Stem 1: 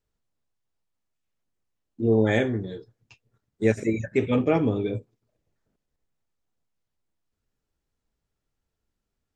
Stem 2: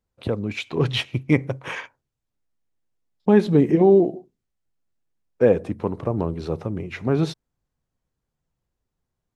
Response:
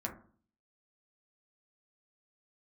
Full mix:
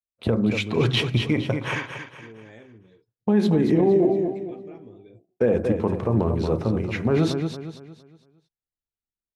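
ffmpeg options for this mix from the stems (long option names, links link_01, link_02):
-filter_complex "[0:a]acompressor=threshold=-26dB:ratio=2,adelay=200,volume=-19.5dB[link_01];[1:a]agate=range=-33dB:threshold=-43dB:ratio=3:detection=peak,alimiter=limit=-11.5dB:level=0:latency=1:release=57,volume=-0.5dB,asplit=3[link_02][link_03][link_04];[link_03]volume=-4.5dB[link_05];[link_04]volume=-5dB[link_06];[2:a]atrim=start_sample=2205[link_07];[link_05][link_07]afir=irnorm=-1:irlink=0[link_08];[link_06]aecho=0:1:230|460|690|920|1150:1|0.38|0.144|0.0549|0.0209[link_09];[link_01][link_02][link_08][link_09]amix=inputs=4:normalize=0,alimiter=limit=-11dB:level=0:latency=1:release=41"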